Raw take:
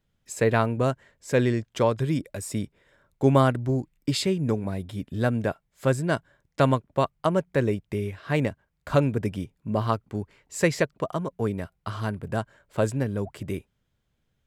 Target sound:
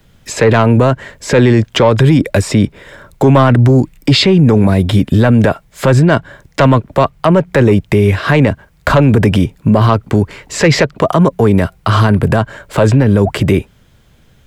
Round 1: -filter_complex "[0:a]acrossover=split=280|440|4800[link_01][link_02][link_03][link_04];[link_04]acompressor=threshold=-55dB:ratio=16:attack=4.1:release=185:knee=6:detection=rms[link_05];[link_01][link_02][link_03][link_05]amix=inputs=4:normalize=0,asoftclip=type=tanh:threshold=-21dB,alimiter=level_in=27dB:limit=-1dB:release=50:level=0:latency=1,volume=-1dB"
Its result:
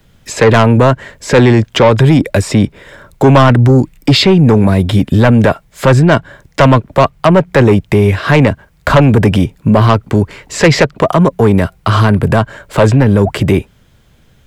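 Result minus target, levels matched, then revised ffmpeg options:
soft clipping: distortion +6 dB
-filter_complex "[0:a]acrossover=split=280|440|4800[link_01][link_02][link_03][link_04];[link_04]acompressor=threshold=-55dB:ratio=16:attack=4.1:release=185:knee=6:detection=rms[link_05];[link_01][link_02][link_03][link_05]amix=inputs=4:normalize=0,asoftclip=type=tanh:threshold=-14.5dB,alimiter=level_in=27dB:limit=-1dB:release=50:level=0:latency=1,volume=-1dB"

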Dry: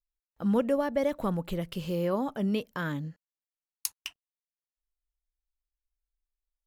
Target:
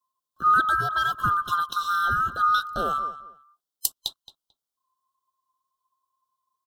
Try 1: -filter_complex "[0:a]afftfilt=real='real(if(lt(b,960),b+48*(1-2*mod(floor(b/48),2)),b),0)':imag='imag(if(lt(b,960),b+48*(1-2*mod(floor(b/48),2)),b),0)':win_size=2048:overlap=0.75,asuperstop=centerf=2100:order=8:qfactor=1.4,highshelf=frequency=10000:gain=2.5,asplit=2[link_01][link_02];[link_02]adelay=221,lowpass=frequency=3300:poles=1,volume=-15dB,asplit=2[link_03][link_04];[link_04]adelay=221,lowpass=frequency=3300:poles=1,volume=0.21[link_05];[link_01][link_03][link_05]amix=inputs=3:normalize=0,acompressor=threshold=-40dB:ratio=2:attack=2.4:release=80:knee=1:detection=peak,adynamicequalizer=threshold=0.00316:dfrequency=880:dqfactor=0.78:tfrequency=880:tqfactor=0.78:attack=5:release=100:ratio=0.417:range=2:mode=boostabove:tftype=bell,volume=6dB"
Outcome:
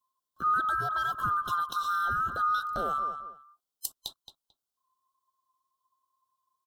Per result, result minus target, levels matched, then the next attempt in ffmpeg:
downward compressor: peak gain reduction +11 dB; 4,000 Hz band −3.5 dB
-filter_complex "[0:a]afftfilt=real='real(if(lt(b,960),b+48*(1-2*mod(floor(b/48),2)),b),0)':imag='imag(if(lt(b,960),b+48*(1-2*mod(floor(b/48),2)),b),0)':win_size=2048:overlap=0.75,asuperstop=centerf=2100:order=8:qfactor=1.4,highshelf=frequency=10000:gain=2.5,asplit=2[link_01][link_02];[link_02]adelay=221,lowpass=frequency=3300:poles=1,volume=-15dB,asplit=2[link_03][link_04];[link_04]adelay=221,lowpass=frequency=3300:poles=1,volume=0.21[link_05];[link_01][link_03][link_05]amix=inputs=3:normalize=0,adynamicequalizer=threshold=0.00316:dfrequency=880:dqfactor=0.78:tfrequency=880:tqfactor=0.78:attack=5:release=100:ratio=0.417:range=2:mode=boostabove:tftype=bell,volume=6dB"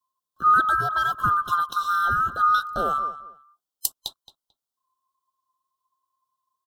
4,000 Hz band −4.5 dB
-filter_complex "[0:a]afftfilt=real='real(if(lt(b,960),b+48*(1-2*mod(floor(b/48),2)),b),0)':imag='imag(if(lt(b,960),b+48*(1-2*mod(floor(b/48),2)),b),0)':win_size=2048:overlap=0.75,asuperstop=centerf=2100:order=8:qfactor=1.4,highshelf=frequency=10000:gain=2.5,asplit=2[link_01][link_02];[link_02]adelay=221,lowpass=frequency=3300:poles=1,volume=-15dB,asplit=2[link_03][link_04];[link_04]adelay=221,lowpass=frequency=3300:poles=1,volume=0.21[link_05];[link_01][link_03][link_05]amix=inputs=3:normalize=0,adynamicequalizer=threshold=0.00316:dfrequency=2900:dqfactor=0.78:tfrequency=2900:tqfactor=0.78:attack=5:release=100:ratio=0.417:range=2:mode=boostabove:tftype=bell,volume=6dB"

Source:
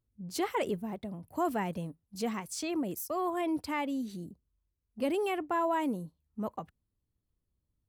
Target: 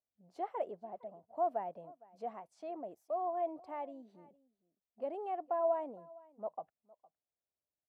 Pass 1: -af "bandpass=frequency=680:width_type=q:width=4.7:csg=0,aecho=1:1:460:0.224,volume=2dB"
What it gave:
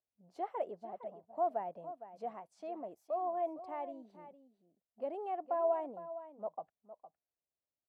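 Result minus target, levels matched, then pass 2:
echo-to-direct +9.5 dB
-af "bandpass=frequency=680:width_type=q:width=4.7:csg=0,aecho=1:1:460:0.075,volume=2dB"

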